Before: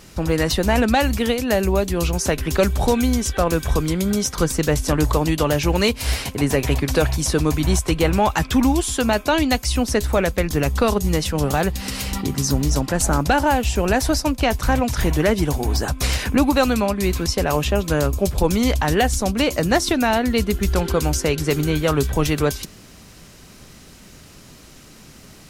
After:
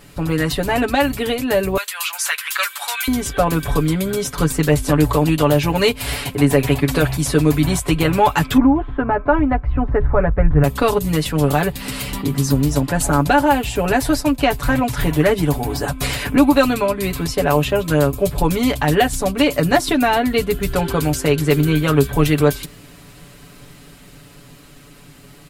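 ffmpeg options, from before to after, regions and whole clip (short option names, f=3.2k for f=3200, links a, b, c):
-filter_complex "[0:a]asettb=1/sr,asplit=3[a][b][c];[a]atrim=end=1.774[d];[b]atrim=start=1.77:end=3.08,asetpts=PTS-STARTPTS,afade=t=in:d=0.004:c=qsin,afade=t=out:st=1.306:d=0.004:c=qsin,highpass=f=1.2k:w=0.5412,highpass=f=1.2k:w=1.3066,acontrast=32[e];[c]atrim=start=3.076[f];[d][e]acrossfade=d=0.004:c1=hsin:c2=qsin[g];[g][f]acrossfade=d=0.004:c1=qsin:c2=hsin,asettb=1/sr,asplit=3[h][i][j];[h]atrim=end=8.574[k];[i]atrim=start=8.57:end=10.64,asetpts=PTS-STARTPTS,afade=t=in:d=0.004:c=qsin,afade=t=out:st=2.066:d=0.004:c=qsin,lowpass=f=1.6k:w=0.5412,lowpass=f=1.6k:w=1.3066,asubboost=boost=10.5:cutoff=100[l];[j]atrim=start=10.636[m];[k][l]acrossfade=d=0.004:c1=hsin:c2=qsin[n];[n][m]acrossfade=d=0.004:c1=qsin:c2=hsin,equalizer=f=5.8k:t=o:w=0.55:g=-9,aecho=1:1:7:0.81,dynaudnorm=f=200:g=17:m=11.5dB,volume=-1dB"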